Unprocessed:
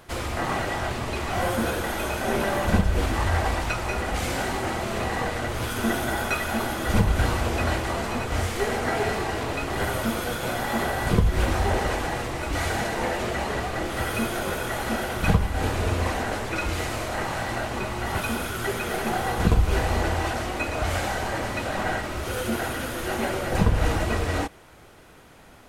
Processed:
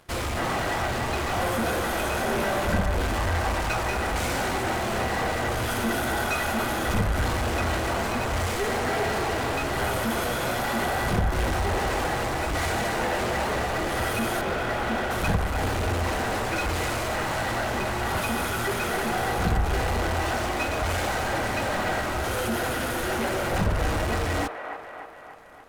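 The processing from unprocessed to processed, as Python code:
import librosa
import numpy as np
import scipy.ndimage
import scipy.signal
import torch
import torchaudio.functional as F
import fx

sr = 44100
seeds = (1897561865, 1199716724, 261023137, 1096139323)

p1 = fx.lowpass(x, sr, hz=3000.0, slope=12, at=(14.41, 15.11))
p2 = fx.fuzz(p1, sr, gain_db=35.0, gate_db=-43.0)
p3 = p1 + F.gain(torch.from_numpy(p2), -8.5).numpy()
p4 = fx.echo_wet_bandpass(p3, sr, ms=291, feedback_pct=58, hz=1000.0, wet_db=-4.5)
y = F.gain(torch.from_numpy(p4), -8.0).numpy()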